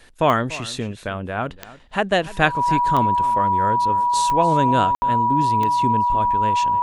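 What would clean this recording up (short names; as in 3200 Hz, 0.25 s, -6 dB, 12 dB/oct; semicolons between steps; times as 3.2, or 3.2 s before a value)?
de-click; notch 970 Hz, Q 30; room tone fill 4.95–5.02; inverse comb 0.291 s -18 dB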